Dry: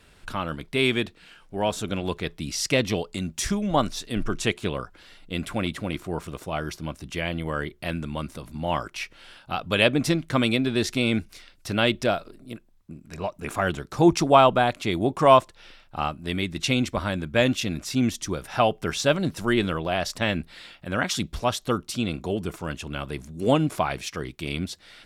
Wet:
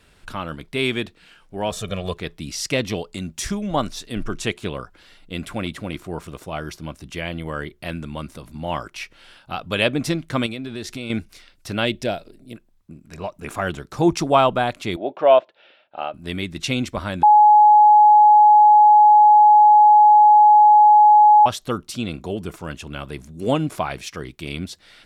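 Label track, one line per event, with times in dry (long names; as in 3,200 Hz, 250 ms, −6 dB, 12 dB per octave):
1.710000	2.140000	comb filter 1.7 ms, depth 83%
10.460000	11.100000	downward compressor 3 to 1, threshold −29 dBFS
11.850000	12.540000	parametric band 1,200 Hz −11.5 dB 0.53 octaves
14.960000	16.140000	loudspeaker in its box 410–3,300 Hz, peaks and dips at 610 Hz +8 dB, 1,100 Hz −9 dB, 2,000 Hz −5 dB
17.230000	21.460000	beep over 842 Hz −7.5 dBFS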